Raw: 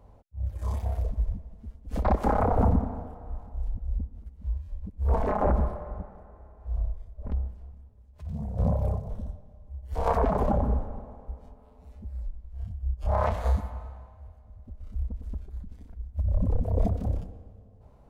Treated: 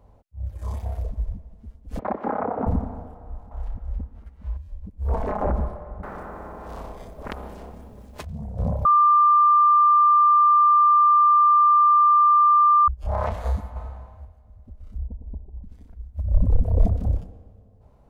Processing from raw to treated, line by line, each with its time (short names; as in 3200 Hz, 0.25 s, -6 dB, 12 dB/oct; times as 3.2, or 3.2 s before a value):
1.99–2.67 Chebyshev band-pass 240–1900 Hz
3.51–4.57 bell 1500 Hz +14 dB 2.7 oct
6.03–8.25 spectral compressor 4:1
8.85–12.88 bleep 1190 Hz -12.5 dBFS
13.76–14.25 gain +5.5 dB
14.98–15.64 steep low-pass 990 Hz 96 dB/oct
16.31–17.17 low shelf 91 Hz +9.5 dB